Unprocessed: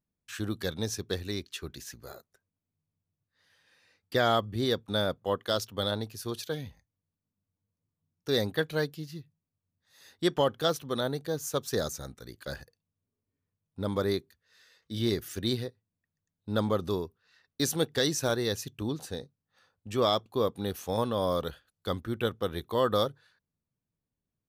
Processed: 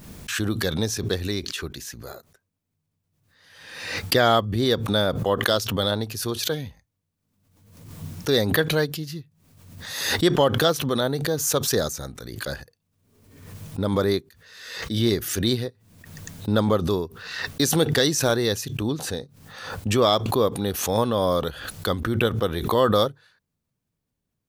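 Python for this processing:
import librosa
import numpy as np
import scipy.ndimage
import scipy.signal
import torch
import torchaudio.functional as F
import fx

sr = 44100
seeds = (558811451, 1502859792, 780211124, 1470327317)

y = fx.pre_swell(x, sr, db_per_s=54.0)
y = F.gain(torch.from_numpy(y), 6.5).numpy()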